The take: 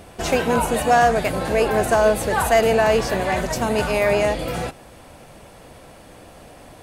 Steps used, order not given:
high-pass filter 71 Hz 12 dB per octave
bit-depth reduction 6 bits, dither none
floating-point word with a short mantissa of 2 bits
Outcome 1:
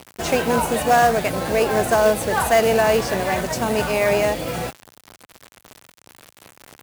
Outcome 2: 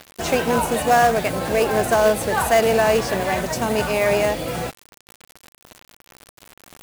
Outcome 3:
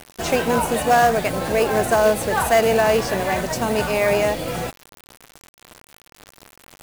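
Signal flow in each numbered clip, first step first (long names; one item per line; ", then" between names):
bit-depth reduction, then high-pass filter, then floating-point word with a short mantissa
high-pass filter, then bit-depth reduction, then floating-point word with a short mantissa
high-pass filter, then floating-point word with a short mantissa, then bit-depth reduction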